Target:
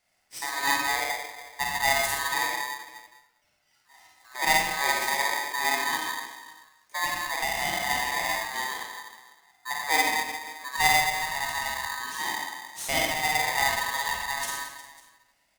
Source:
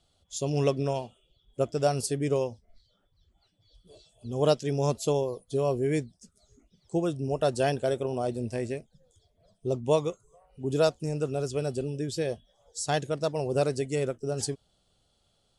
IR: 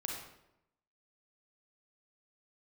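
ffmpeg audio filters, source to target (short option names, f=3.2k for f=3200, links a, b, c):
-filter_complex "[0:a]highshelf=f=9.1k:g=8,asettb=1/sr,asplit=3[a][b][c];[a]atrim=end=2.444[d];[b]atrim=start=2.44:end=4.35,asetpts=PTS-STARTPTS,afade=t=in:d=0.004:c=qsin,afade=t=out:st=1.906:d=0.004:c=qsin,acrossover=split=180|3000[e][f][g];[f]acompressor=threshold=-48dB:ratio=6[h];[e][h][g]amix=inputs=3:normalize=0[i];[c]atrim=start=4.346[j];[d][i]acrossfade=d=0.004:c1=hsin:c2=qsin[k];[k][j]acrossfade=d=0.004:c1=qsin:c2=hsin,acrossover=split=360 2100:gain=0.158 1 0.0794[l][m][n];[l][m][n]amix=inputs=3:normalize=0,aecho=1:1:50|120|218|355.2|547.3:0.631|0.398|0.251|0.158|0.1,acrossover=split=110[o][p];[p]crystalizer=i=6.5:c=0[q];[o][q]amix=inputs=2:normalize=0[r];[1:a]atrim=start_sample=2205[s];[r][s]afir=irnorm=-1:irlink=0,asettb=1/sr,asplit=3[t][u][v];[t]atrim=end=7.184[w];[u]atrim=start=7.18:end=7.9,asetpts=PTS-STARTPTS,afade=t=in:d=0.004:c=qsin,afade=t=out:st=0.716:d=0.004:c=qsin,acompressor=threshold=-25dB:ratio=6[x];[v]atrim=start=7.896[y];[w][x]acrossfade=d=0.004:c1=hsin:c2=qsin[z];[z][y]acrossfade=d=0.004:c1=qsin:c2=hsin,aeval=exprs='val(0)*sgn(sin(2*PI*1400*n/s))':c=same"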